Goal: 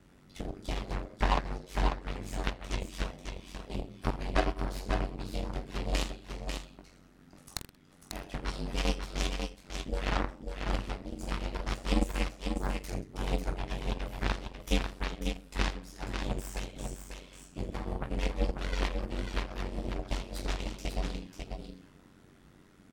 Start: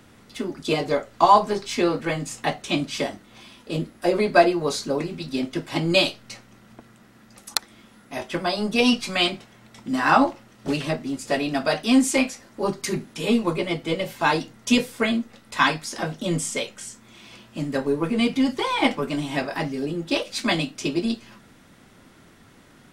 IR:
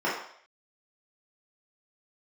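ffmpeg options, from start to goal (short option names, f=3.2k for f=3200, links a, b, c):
-filter_complex "[0:a]asplit=2[a][b];[b]aecho=0:1:20|46|79.8|123.7|180.9:0.631|0.398|0.251|0.158|0.1[c];[a][c]amix=inputs=2:normalize=0,aeval=exprs='1*(cos(1*acos(clip(val(0)/1,-1,1)))-cos(1*PI/2))+0.178*(cos(3*acos(clip(val(0)/1,-1,1)))-cos(3*PI/2))+0.112*(cos(6*acos(clip(val(0)/1,-1,1)))-cos(6*PI/2))+0.0891*(cos(7*acos(clip(val(0)/1,-1,1)))-cos(7*PI/2))':c=same,acompressor=threshold=-45dB:ratio=2,aeval=exprs='val(0)*sin(2*PI*46*n/s)':c=same,lowshelf=f=440:g=7.5,asplit=2[d][e];[e]aecho=0:1:544:0.531[f];[d][f]amix=inputs=2:normalize=0,volume=5dB"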